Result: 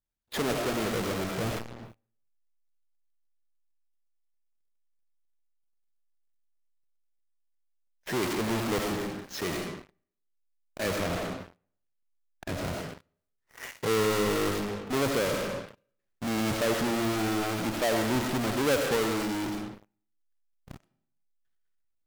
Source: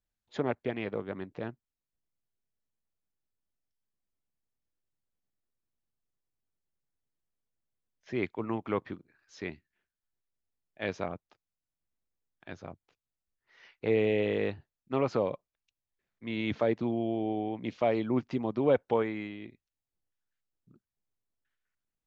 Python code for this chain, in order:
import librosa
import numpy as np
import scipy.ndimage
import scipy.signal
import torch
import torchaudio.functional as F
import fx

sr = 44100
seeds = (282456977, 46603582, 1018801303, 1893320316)

p1 = fx.halfwave_hold(x, sr)
p2 = fx.high_shelf(p1, sr, hz=5300.0, db=-7.0, at=(11.0, 12.54))
p3 = fx.rev_freeverb(p2, sr, rt60_s=0.71, hf_ratio=0.85, predelay_ms=45, drr_db=6.0)
p4 = fx.fuzz(p3, sr, gain_db=49.0, gate_db=-56.0)
p5 = p3 + (p4 * librosa.db_to_amplitude(-11.0))
y = p5 * librosa.db_to_amplitude(-8.0)